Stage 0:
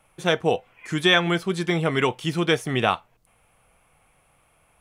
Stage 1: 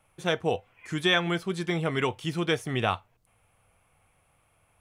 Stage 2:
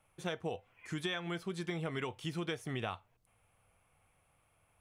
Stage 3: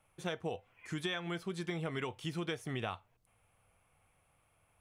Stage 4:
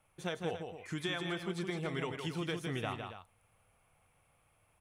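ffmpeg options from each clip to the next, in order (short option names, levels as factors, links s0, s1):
-af "equalizer=f=95:w=3.6:g=10.5,volume=0.531"
-af "acompressor=threshold=0.0398:ratio=10,volume=0.531"
-af anull
-af "aecho=1:1:160.3|277:0.501|0.251"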